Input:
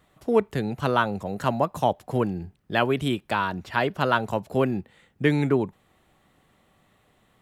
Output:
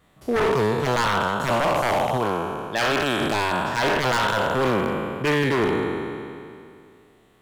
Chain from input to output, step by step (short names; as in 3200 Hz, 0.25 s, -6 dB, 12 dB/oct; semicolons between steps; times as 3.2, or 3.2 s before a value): spectral trails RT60 2.42 s; 2.17–3.21 low shelf 460 Hz -6.5 dB; wavefolder -15 dBFS